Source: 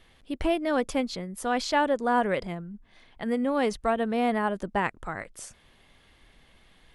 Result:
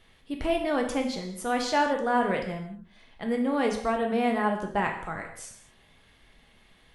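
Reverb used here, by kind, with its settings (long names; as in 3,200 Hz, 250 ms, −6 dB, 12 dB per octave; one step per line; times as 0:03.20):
reverb whose tail is shaped and stops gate 250 ms falling, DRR 2 dB
level −2 dB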